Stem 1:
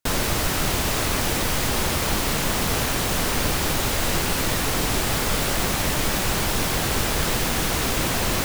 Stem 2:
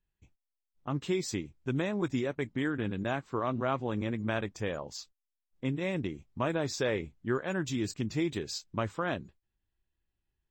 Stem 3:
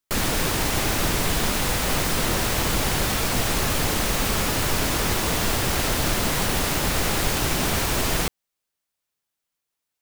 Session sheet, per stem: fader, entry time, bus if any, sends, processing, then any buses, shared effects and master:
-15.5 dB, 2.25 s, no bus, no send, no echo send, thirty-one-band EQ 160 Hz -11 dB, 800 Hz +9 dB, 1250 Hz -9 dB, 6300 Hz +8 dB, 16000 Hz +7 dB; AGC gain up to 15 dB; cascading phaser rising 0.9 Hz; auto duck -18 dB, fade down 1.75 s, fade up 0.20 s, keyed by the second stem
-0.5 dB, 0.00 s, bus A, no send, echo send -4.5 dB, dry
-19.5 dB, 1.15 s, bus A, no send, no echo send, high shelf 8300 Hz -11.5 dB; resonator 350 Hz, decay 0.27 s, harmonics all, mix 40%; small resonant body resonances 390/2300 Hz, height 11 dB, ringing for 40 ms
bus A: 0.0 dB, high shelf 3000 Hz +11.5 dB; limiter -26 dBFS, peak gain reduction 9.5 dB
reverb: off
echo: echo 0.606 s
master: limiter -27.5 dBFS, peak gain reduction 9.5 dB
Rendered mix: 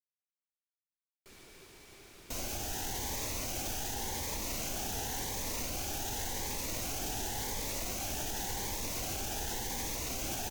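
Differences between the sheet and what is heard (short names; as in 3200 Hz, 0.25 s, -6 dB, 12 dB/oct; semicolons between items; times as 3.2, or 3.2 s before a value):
stem 2: muted; stem 3 -19.5 dB -> -31.5 dB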